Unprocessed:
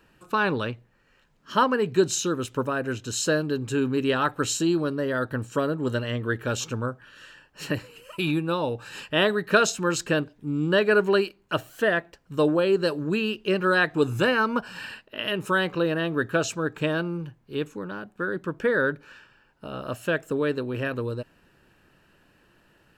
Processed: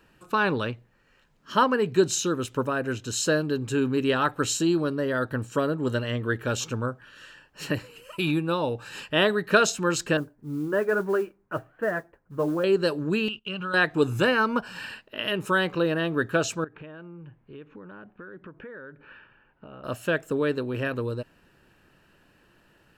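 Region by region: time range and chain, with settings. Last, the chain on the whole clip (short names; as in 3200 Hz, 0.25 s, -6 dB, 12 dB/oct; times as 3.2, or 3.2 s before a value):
10.17–12.64 LPF 1800 Hz 24 dB/oct + flange 1.2 Hz, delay 5.8 ms, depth 4 ms, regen -46% + modulation noise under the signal 30 dB
13.28–13.74 EQ curve 170 Hz 0 dB, 370 Hz -12 dB, 1400 Hz 0 dB, 1900 Hz -13 dB, 2900 Hz +7 dB, 4800 Hz -9 dB, 7200 Hz -8 dB, 14000 Hz -16 dB + gate -42 dBFS, range -17 dB + compressor 3:1, threshold -30 dBFS
16.64–19.84 compressor 5:1, threshold -41 dBFS + LPF 2800 Hz 24 dB/oct
whole clip: dry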